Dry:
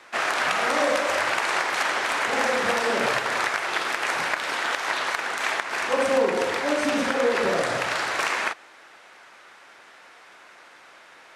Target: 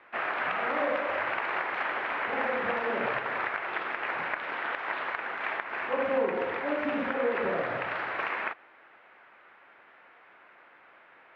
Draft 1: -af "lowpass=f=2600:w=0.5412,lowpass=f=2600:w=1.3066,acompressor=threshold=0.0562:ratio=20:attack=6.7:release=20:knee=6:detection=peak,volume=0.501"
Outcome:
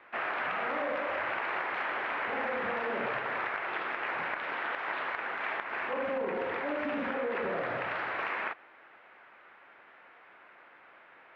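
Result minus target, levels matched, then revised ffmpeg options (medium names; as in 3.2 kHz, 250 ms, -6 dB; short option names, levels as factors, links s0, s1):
compression: peak gain reduction +9 dB
-af "lowpass=f=2600:w=0.5412,lowpass=f=2600:w=1.3066,volume=0.501"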